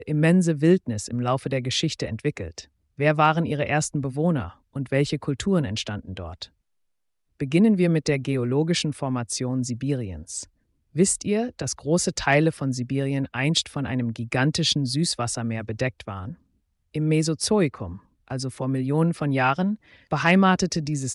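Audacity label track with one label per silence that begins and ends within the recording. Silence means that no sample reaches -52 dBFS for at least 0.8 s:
6.480000	7.400000	silence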